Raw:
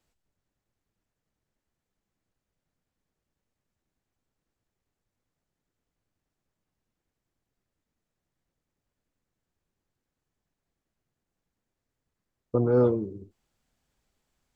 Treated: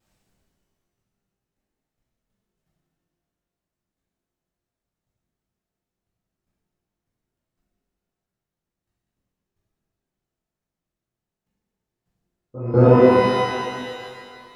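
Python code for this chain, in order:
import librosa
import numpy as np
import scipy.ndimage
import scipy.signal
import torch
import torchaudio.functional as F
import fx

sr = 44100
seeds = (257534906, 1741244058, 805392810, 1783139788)

y = fx.peak_eq(x, sr, hz=170.0, db=6.5, octaves=0.29)
y = fx.level_steps(y, sr, step_db=20)
y = fx.echo_thinned(y, sr, ms=133, feedback_pct=82, hz=180.0, wet_db=-21.0)
y = fx.vibrato(y, sr, rate_hz=3.6, depth_cents=76.0)
y = fx.rev_shimmer(y, sr, seeds[0], rt60_s=2.1, semitones=12, shimmer_db=-8, drr_db=-11.0)
y = F.gain(torch.from_numpy(y), 2.0).numpy()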